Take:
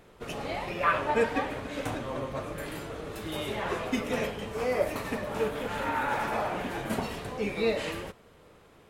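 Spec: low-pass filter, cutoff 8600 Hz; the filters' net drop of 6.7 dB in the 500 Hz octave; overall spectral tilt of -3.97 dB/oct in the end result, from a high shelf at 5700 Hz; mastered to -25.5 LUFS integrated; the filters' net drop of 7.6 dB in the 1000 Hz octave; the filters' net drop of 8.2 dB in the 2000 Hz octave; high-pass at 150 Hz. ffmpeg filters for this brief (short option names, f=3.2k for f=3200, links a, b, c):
-af "highpass=150,lowpass=8.6k,equalizer=f=500:t=o:g=-6,equalizer=f=1k:t=o:g=-5.5,equalizer=f=2k:t=o:g=-8,highshelf=f=5.7k:g=-4,volume=12dB"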